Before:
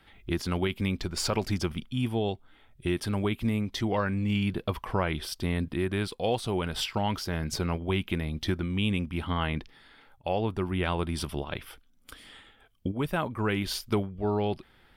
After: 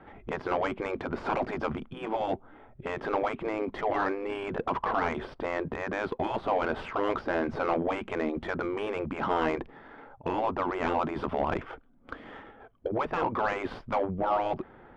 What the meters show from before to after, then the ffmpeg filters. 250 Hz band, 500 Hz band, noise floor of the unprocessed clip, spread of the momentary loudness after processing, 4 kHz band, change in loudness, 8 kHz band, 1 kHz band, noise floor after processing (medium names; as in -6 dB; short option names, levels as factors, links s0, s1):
-4.0 dB, +2.0 dB, -60 dBFS, 9 LU, -11.0 dB, -1.0 dB, under -15 dB, +5.5 dB, -54 dBFS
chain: -filter_complex "[0:a]afftfilt=real='re*lt(hypot(re,im),0.1)':imag='im*lt(hypot(re,im),0.1)':win_size=1024:overlap=0.75,asplit=2[s0][s1];[s1]highpass=f=720:p=1,volume=11.2,asoftclip=type=tanh:threshold=0.141[s2];[s0][s2]amix=inputs=2:normalize=0,lowpass=f=1100:p=1,volume=0.501,adynamicsmooth=sensitivity=1:basefreq=970,volume=2"